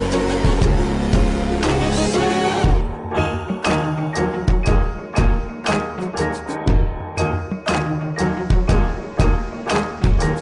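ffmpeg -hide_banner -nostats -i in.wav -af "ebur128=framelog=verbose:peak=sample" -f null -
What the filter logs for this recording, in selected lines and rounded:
Integrated loudness:
  I:         -20.0 LUFS
  Threshold: -30.0 LUFS
Loudness range:
  LRA:         2.8 LU
  Threshold: -40.3 LUFS
  LRA low:   -21.5 LUFS
  LRA high:  -18.7 LUFS
Sample peak:
  Peak:       -5.3 dBFS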